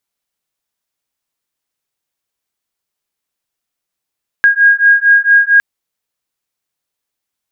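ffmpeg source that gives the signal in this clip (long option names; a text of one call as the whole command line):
ffmpeg -f lavfi -i "aevalsrc='0.355*(sin(2*PI*1630*t)+sin(2*PI*1634.4*t))':duration=1.16:sample_rate=44100" out.wav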